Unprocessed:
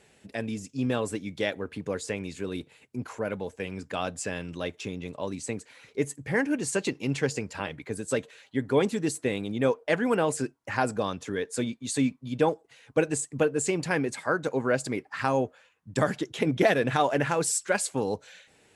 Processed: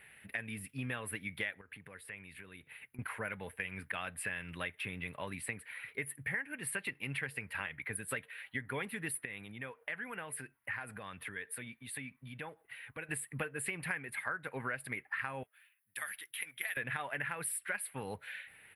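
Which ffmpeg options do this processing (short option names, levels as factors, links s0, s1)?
-filter_complex "[0:a]asettb=1/sr,asplit=3[s0][s1][s2];[s0]atrim=end=1.614[s3];[s1]atrim=start=1.61:end=2.99,asetpts=PTS-STARTPTS,afade=t=in:d=0.004:c=qsin,afade=t=out:st=1.376:d=0.004:c=qsin,acompressor=threshold=0.00316:ratio=2.5:attack=3.2:release=140:knee=1:detection=peak[s4];[s2]atrim=start=2.986[s5];[s3][s4]acrossfade=d=0.004:c1=hsin:c2=qsin[s6];[s6][s5]acrossfade=d=0.004:c1=qsin:c2=hsin,asettb=1/sr,asplit=3[s7][s8][s9];[s7]atrim=end=9.254[s10];[s8]atrim=start=9.25:end=13.09,asetpts=PTS-STARTPTS,afade=t=in:d=0.004:c=qsin,afade=t=out:st=3.836:d=0.004:c=qsin,acompressor=threshold=0.00794:ratio=2.5:attack=3.2:release=140:knee=1:detection=peak[s11];[s9]atrim=start=13.086[s12];[s10][s11]acrossfade=d=0.004:c1=hsin:c2=qsin[s13];[s13][s12]acrossfade=d=0.004:c1=qsin:c2=hsin,asettb=1/sr,asplit=3[s14][s15][s16];[s14]atrim=end=15.434[s17];[s15]atrim=start=15.43:end=16.77,asetpts=PTS-STARTPTS,afade=t=in:d=0.004:c=qsin,afade=t=out:st=1.336:d=0.004:c=qsin,aderivative[s18];[s16]atrim=start=16.766[s19];[s17][s18]acrossfade=d=0.004:c1=hsin:c2=qsin[s20];[s20][s19]acrossfade=d=0.004:c1=qsin:c2=hsin,firequalizer=gain_entry='entry(120,0);entry(300,-9);entry(1900,14);entry(6600,-26);entry(9800,13)':delay=0.05:min_phase=1,acompressor=threshold=0.0251:ratio=6,volume=0.668"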